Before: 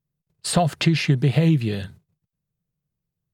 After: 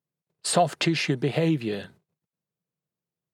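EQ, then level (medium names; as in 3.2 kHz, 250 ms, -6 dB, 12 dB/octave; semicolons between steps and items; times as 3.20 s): high-pass 360 Hz 12 dB/octave; dynamic bell 7.8 kHz, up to +6 dB, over -42 dBFS, Q 0.8; tilt EQ -2 dB/octave; 0.0 dB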